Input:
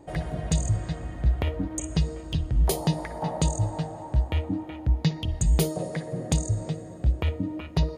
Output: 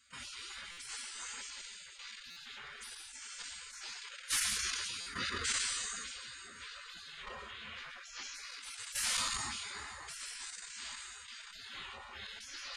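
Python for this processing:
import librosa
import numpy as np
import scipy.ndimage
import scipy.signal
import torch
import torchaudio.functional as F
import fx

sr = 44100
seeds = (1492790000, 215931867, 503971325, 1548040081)

p1 = fx.octave_divider(x, sr, octaves=1, level_db=-3.0)
p2 = p1 + fx.echo_feedback(p1, sr, ms=93, feedback_pct=16, wet_db=-8.5, dry=0)
p3 = fx.room_shoebox(p2, sr, seeds[0], volume_m3=140.0, walls='furnished', distance_m=3.3)
p4 = fx.dynamic_eq(p3, sr, hz=840.0, q=2.0, threshold_db=-46.0, ratio=4.0, max_db=6)
p5 = scipy.signal.sosfilt(scipy.signal.butter(2, 350.0, 'highpass', fs=sr, output='sos'), p4)
p6 = fx.stretch_vocoder_free(p5, sr, factor=1.6)
p7 = scipy.signal.sosfilt(scipy.signal.butter(4, 8300.0, 'lowpass', fs=sr, output='sos'), p6)
p8 = fx.peak_eq(p7, sr, hz=1100.0, db=5.0, octaves=0.34)
p9 = fx.level_steps(p8, sr, step_db=11)
p10 = fx.spec_gate(p9, sr, threshold_db=-30, keep='weak')
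p11 = fx.buffer_glitch(p10, sr, at_s=(0.71, 2.3, 5.0), block=256, repeats=10)
p12 = fx.sustainer(p11, sr, db_per_s=22.0)
y = p12 * 10.0 ** (8.5 / 20.0)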